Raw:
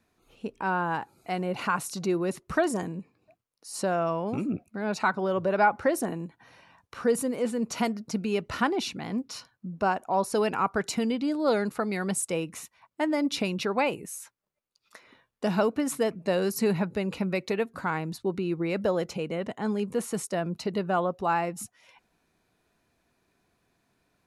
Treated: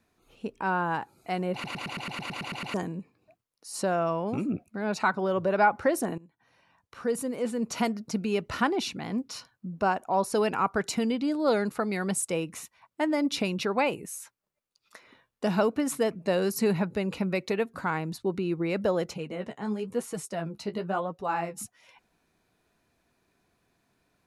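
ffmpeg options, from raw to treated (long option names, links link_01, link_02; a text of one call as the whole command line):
ffmpeg -i in.wav -filter_complex "[0:a]asettb=1/sr,asplit=3[link_01][link_02][link_03];[link_01]atrim=end=19.144[link_04];[link_02]atrim=start=19.14:end=21.58,asetpts=PTS-STARTPTS,afade=type=in:duration=0.004:curve=qsin,afade=type=out:start_time=2.436:duration=0.004:curve=qsin,flanger=delay=6.3:depth=8.6:regen=27:speed=1:shape=sinusoidal[link_05];[link_03]atrim=start=21.576[link_06];[link_04][link_05]acrossfade=duration=0.004:curve1=hsin:curve2=qsin[link_07];[link_07][link_06]acrossfade=duration=0.004:curve1=qsin:curve2=hsin,asplit=13[link_08][link_09][link_10][link_11][link_12][link_13][link_14][link_15][link_16][link_17][link_18][link_19][link_20];[link_08]atrim=end=1.642[link_21];[link_09]atrim=start=1.528:end=1.642[link_22];[link_10]atrim=start=1.528:end=1.642[link_23];[link_11]atrim=start=1.528:end=1.642[link_24];[link_12]atrim=start=1.528:end=1.642[link_25];[link_13]atrim=start=1.528:end=1.642[link_26];[link_14]atrim=start=1.528:end=1.642[link_27];[link_15]atrim=start=1.528:end=1.642[link_28];[link_16]atrim=start=1.528:end=1.642[link_29];[link_17]atrim=start=1.528:end=1.642[link_30];[link_18]atrim=start=1.528:end=1.642[link_31];[link_19]atrim=start=2.738:end=6.18,asetpts=PTS-STARTPTS,afade=type=out:start_time=3.438:duration=0.004:curve=hsin:silence=0.112202[link_32];[link_20]atrim=start=6.18,asetpts=PTS-STARTPTS,afade=type=in:duration=1.6:silence=0.112202[link_33];[link_21][link_22]acrossfade=duration=0.004:curve1=hsin:curve2=hsin[link_34];[link_34][link_23]acrossfade=duration=0.004:curve1=hsin:curve2=hsin[link_35];[link_35][link_24]acrossfade=duration=0.004:curve1=hsin:curve2=hsin[link_36];[link_36][link_25]acrossfade=duration=0.004:curve1=hsin:curve2=hsin[link_37];[link_37][link_26]acrossfade=duration=0.004:curve1=hsin:curve2=hsin[link_38];[link_38][link_27]acrossfade=duration=0.004:curve1=hsin:curve2=hsin[link_39];[link_39][link_28]acrossfade=duration=0.004:curve1=hsin:curve2=hsin[link_40];[link_40][link_29]acrossfade=duration=0.004:curve1=hsin:curve2=hsin[link_41];[link_41][link_30]acrossfade=duration=0.004:curve1=hsin:curve2=hsin[link_42];[link_42][link_31]acrossfade=duration=0.004:curve1=hsin:curve2=hsin[link_43];[link_32][link_33]concat=n=2:v=0:a=1[link_44];[link_43][link_44]acrossfade=duration=0.004:curve1=hsin:curve2=hsin" out.wav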